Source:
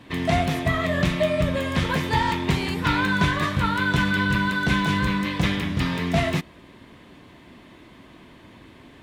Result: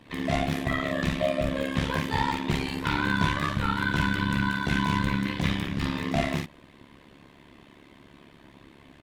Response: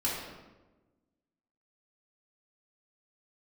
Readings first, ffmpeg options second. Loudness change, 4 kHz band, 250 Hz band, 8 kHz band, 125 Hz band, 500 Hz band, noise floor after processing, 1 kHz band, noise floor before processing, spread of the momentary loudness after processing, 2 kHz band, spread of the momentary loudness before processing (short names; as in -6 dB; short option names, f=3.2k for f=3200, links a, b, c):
-4.5 dB, -4.5 dB, -3.5 dB, -4.5 dB, -4.5 dB, -4.5 dB, -54 dBFS, -4.0 dB, -49 dBFS, 4 LU, -5.0 dB, 3 LU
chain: -af "aecho=1:1:19|50:0.473|0.668,tremolo=f=70:d=0.857,volume=-3dB"